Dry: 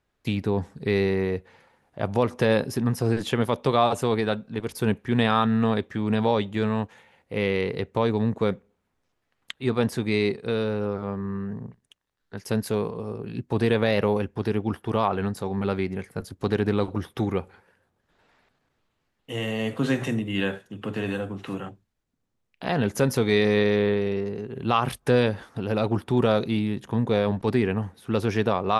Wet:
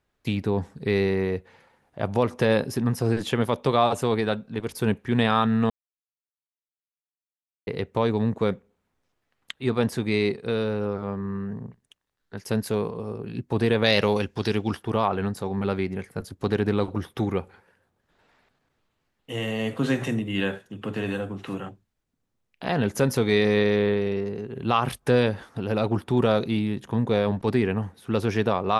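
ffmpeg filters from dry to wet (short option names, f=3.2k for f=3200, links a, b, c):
-filter_complex "[0:a]asettb=1/sr,asplit=3[a][b][c];[a]atrim=end=13.844[d];[b]atrim=start=13.84:end=14.83,asetpts=PTS-STARTPTS,afade=t=in:d=0.004:c=qsin,afade=t=out:st=0.986:d=0.004:c=qsin,equalizer=f=5.1k:w=0.6:g=13.5[e];[c]atrim=start=14.826[f];[d][e]acrossfade=d=0.004:c1=hsin:c2=qsin[g];[g][f]acrossfade=d=0.004:c1=qsin:c2=hsin,asplit=3[h][i][j];[h]atrim=end=5.7,asetpts=PTS-STARTPTS,afade=t=out:st=5.696:d=0.004:c=hsin[k];[i]atrim=start=5.7:end=7.67,asetpts=PTS-STARTPTS,volume=0[l];[j]atrim=start=7.67,asetpts=PTS-STARTPTS,afade=t=in:d=0.004:c=hsin[m];[k][l][m]concat=n=3:v=0:a=1"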